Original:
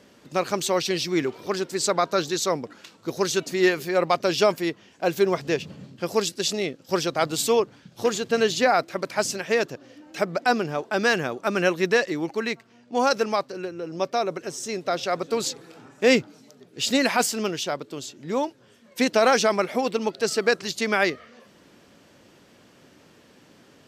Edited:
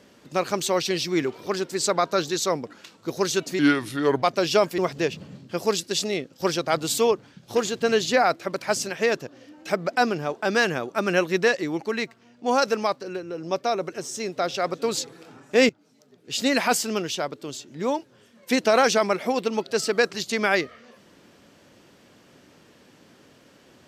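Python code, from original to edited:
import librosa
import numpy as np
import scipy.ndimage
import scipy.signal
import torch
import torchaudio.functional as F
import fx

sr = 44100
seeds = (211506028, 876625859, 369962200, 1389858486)

y = fx.edit(x, sr, fx.speed_span(start_s=3.59, length_s=0.5, speed=0.79),
    fx.cut(start_s=4.65, length_s=0.62),
    fx.fade_in_from(start_s=16.18, length_s=0.91, floor_db=-20.5), tone=tone)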